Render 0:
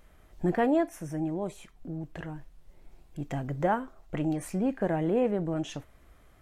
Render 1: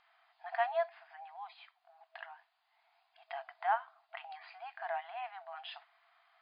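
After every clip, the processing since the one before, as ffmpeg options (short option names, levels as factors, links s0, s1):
-af "afftfilt=real='re*between(b*sr/4096,650,5000)':imag='im*between(b*sr/4096,650,5000)':win_size=4096:overlap=0.75,volume=0.794"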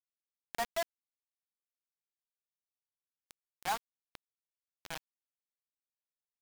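-af "acrusher=bits=4:mix=0:aa=0.000001,volume=0.596"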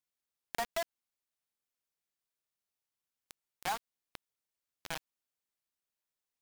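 -af "acompressor=threshold=0.0178:ratio=6,volume=1.58"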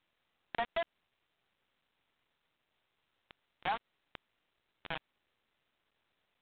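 -af "volume=1.12" -ar 8000 -c:a pcm_mulaw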